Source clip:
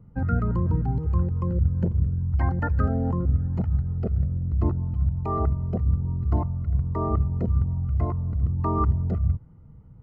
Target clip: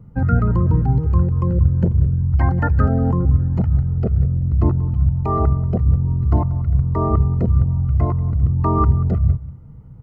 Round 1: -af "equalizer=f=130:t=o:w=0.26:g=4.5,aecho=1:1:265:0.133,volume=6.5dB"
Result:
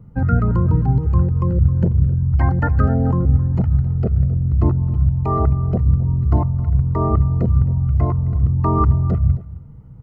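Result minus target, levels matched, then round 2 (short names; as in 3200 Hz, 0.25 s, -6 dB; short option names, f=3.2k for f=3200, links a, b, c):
echo 80 ms late
-af "equalizer=f=130:t=o:w=0.26:g=4.5,aecho=1:1:185:0.133,volume=6.5dB"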